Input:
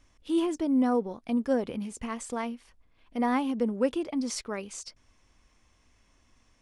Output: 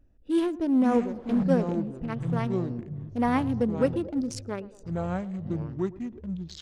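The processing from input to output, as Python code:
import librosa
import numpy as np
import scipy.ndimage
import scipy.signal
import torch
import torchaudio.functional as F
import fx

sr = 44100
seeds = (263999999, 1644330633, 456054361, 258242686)

p1 = fx.wiener(x, sr, points=41)
p2 = fx.dmg_wind(p1, sr, seeds[0], corner_hz=600.0, level_db=-38.0, at=(0.87, 1.42), fade=0.02)
p3 = fx.echo_pitch(p2, sr, ms=401, semitones=-6, count=3, db_per_echo=-6.0)
p4 = p3 + fx.echo_banded(p3, sr, ms=110, feedback_pct=66, hz=510.0, wet_db=-17.5, dry=0)
y = p4 * librosa.db_to_amplitude(2.5)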